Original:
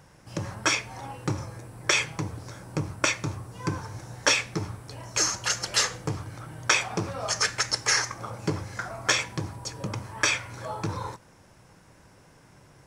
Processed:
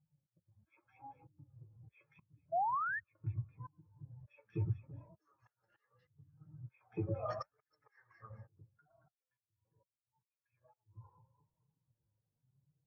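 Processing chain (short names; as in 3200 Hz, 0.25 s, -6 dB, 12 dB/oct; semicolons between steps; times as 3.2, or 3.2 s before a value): Wiener smoothing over 9 samples; LPF 3500 Hz 12 dB/oct; echo with dull and thin repeats by turns 0.112 s, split 1300 Hz, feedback 61%, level -6 dB; 8.66–10.74 compressor 5:1, threshold -40 dBFS, peak gain reduction 18.5 dB; flange 0.78 Hz, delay 6.2 ms, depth 3.2 ms, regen +48%; auto swell 0.778 s; 2.52–3 painted sound rise 640–1900 Hz -40 dBFS; flange 1.7 Hz, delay 3.5 ms, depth 9.2 ms, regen -89%; spectral expander 2.5:1; gain +3 dB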